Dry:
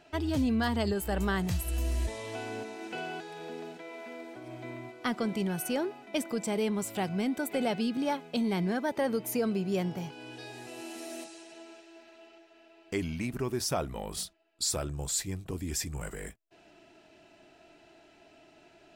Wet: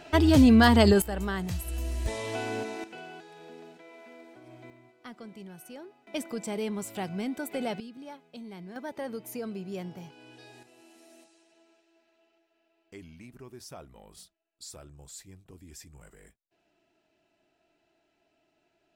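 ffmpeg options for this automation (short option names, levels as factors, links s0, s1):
-af "asetnsamples=n=441:p=0,asendcmd='1.02 volume volume -2dB;2.06 volume volume 5dB;2.84 volume volume -6.5dB;4.7 volume volume -14dB;6.07 volume volume -2.5dB;7.8 volume volume -14dB;8.76 volume volume -7dB;10.63 volume volume -14.5dB',volume=3.35"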